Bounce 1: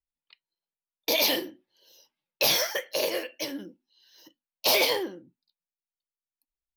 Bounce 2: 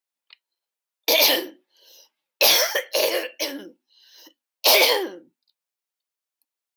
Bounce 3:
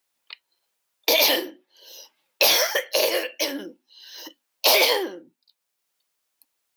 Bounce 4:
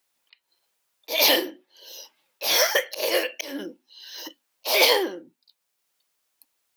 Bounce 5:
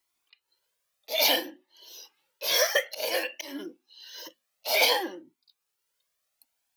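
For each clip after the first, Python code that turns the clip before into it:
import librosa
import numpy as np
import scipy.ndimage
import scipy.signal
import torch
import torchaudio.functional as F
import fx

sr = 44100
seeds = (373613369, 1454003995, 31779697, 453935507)

y1 = scipy.signal.sosfilt(scipy.signal.butter(2, 380.0, 'highpass', fs=sr, output='sos'), x)
y1 = y1 * 10.0 ** (7.0 / 20.0)
y2 = fx.band_squash(y1, sr, depth_pct=40)
y3 = fx.auto_swell(y2, sr, attack_ms=206.0)
y3 = y3 * 10.0 ** (2.0 / 20.0)
y4 = fx.comb_cascade(y3, sr, direction='rising', hz=0.57)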